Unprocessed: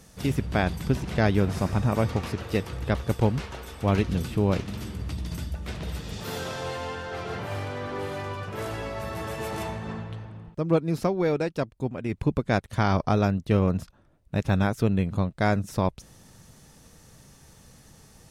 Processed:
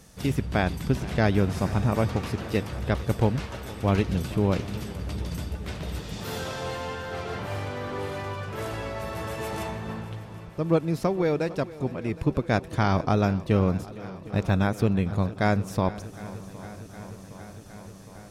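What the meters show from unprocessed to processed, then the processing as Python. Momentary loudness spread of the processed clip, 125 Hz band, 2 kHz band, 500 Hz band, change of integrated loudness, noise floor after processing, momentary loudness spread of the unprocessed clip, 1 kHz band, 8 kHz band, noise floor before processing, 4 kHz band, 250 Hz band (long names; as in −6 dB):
15 LU, 0.0 dB, 0.0 dB, 0.0 dB, 0.0 dB, −44 dBFS, 11 LU, 0.0 dB, 0.0 dB, −55 dBFS, 0.0 dB, 0.0 dB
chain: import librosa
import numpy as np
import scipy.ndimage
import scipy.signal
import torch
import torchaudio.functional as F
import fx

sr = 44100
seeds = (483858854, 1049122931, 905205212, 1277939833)

y = fx.echo_swing(x, sr, ms=763, ratio=1.5, feedback_pct=71, wet_db=-18.5)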